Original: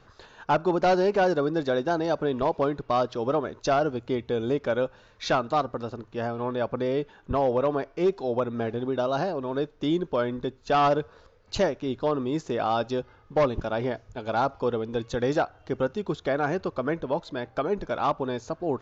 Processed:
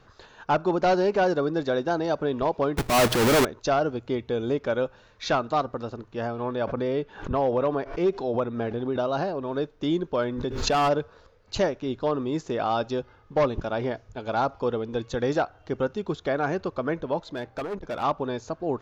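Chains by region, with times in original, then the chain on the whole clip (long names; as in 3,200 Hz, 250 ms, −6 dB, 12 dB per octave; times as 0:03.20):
0:02.77–0:03.45: each half-wave held at its own peak + leveller curve on the samples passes 3 + transient designer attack −7 dB, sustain +4 dB
0:06.67–0:09.45: high-frequency loss of the air 54 metres + background raised ahead of every attack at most 120 dB per second
0:10.22–0:10.89: hard clipping −18.5 dBFS + background raised ahead of every attack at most 52 dB per second
0:17.22–0:18.03: hard clipping −26 dBFS + saturating transformer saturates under 140 Hz
whole clip: no processing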